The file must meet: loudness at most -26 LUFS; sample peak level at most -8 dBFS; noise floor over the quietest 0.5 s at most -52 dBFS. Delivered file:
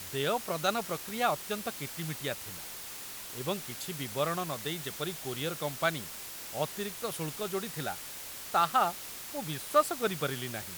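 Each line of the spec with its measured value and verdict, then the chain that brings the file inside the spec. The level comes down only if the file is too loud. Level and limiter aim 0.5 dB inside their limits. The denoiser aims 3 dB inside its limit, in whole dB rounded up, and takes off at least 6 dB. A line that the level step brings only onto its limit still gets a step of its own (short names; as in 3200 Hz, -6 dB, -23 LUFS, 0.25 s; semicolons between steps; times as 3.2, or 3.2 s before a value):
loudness -33.5 LUFS: OK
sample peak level -12.0 dBFS: OK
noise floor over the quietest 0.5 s -43 dBFS: fail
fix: denoiser 12 dB, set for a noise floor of -43 dBFS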